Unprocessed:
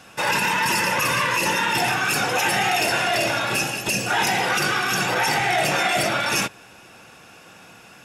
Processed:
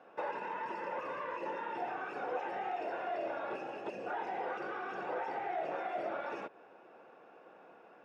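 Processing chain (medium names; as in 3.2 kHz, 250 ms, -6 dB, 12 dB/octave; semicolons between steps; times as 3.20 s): compression, threshold -25 dBFS, peak gain reduction 8 dB; ladder band-pass 570 Hz, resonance 25%; trim +5 dB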